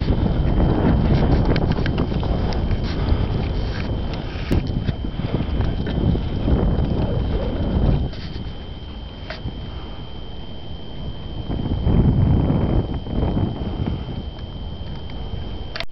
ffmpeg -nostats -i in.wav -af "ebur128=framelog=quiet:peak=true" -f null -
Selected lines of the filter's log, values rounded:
Integrated loudness:
  I:         -22.6 LUFS
  Threshold: -33.0 LUFS
Loudness range:
  LRA:         7.2 LU
  Threshold: -43.2 LUFS
  LRA low:   -27.7 LUFS
  LRA high:  -20.5 LUFS
True peak:
  Peak:       -5.4 dBFS